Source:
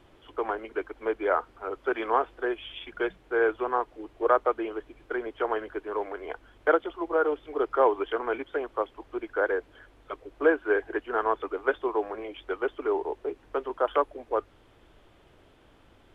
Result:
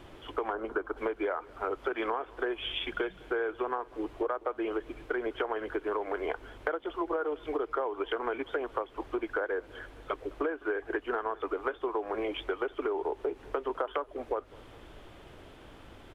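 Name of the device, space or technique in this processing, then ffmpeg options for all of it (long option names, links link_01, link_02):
serial compression, peaks first: -filter_complex "[0:a]acompressor=threshold=-32dB:ratio=5,acompressor=threshold=-36dB:ratio=3,asplit=3[link_01][link_02][link_03];[link_01]afade=type=out:start_time=0.52:duration=0.02[link_04];[link_02]highshelf=frequency=1700:width_type=q:width=3:gain=-7,afade=type=in:start_time=0.52:duration=0.02,afade=type=out:start_time=0.96:duration=0.02[link_05];[link_03]afade=type=in:start_time=0.96:duration=0.02[link_06];[link_04][link_05][link_06]amix=inputs=3:normalize=0,aecho=1:1:206|412|618|824:0.0668|0.0381|0.0217|0.0124,volume=7dB"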